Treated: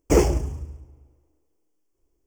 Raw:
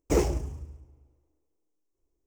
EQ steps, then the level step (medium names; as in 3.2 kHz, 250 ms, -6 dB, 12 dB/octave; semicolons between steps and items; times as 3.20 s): Butterworth band-stop 3.9 kHz, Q 5; +6.5 dB